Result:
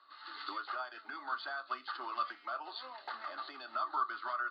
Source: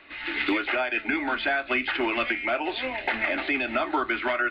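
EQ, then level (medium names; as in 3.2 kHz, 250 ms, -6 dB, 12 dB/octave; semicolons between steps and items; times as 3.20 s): two resonant band-passes 2.3 kHz, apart 1.9 oct; 0.0 dB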